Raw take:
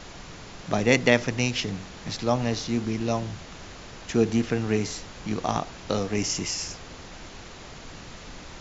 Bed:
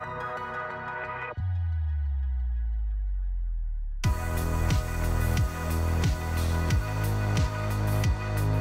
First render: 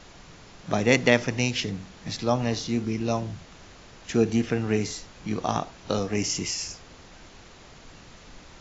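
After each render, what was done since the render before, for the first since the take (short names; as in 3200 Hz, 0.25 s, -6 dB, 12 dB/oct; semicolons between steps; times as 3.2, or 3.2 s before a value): noise print and reduce 6 dB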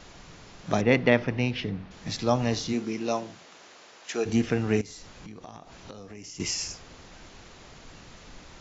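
0.81–1.91 air absorption 280 m; 2.72–4.25 HPF 210 Hz -> 550 Hz; 4.81–6.4 compressor 8:1, threshold -40 dBFS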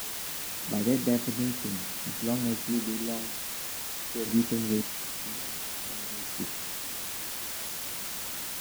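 band-pass 240 Hz, Q 1.7; requantised 6-bit, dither triangular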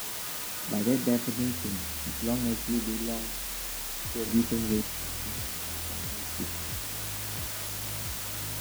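add bed -15.5 dB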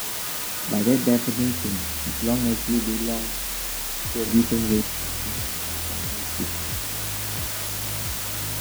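gain +6.5 dB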